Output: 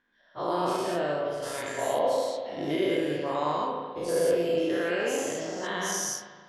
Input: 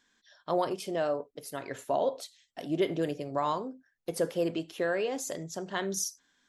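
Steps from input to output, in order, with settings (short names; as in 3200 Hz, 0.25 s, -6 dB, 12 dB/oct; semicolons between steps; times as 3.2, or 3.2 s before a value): spectral dilation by 0.24 s; 1.42–1.99 high shelf 3100 Hz +9.5 dB; low-pass opened by the level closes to 2000 Hz, open at -21 dBFS; spring tank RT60 1.6 s, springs 34/40 ms, chirp 70 ms, DRR 1 dB; gain -6 dB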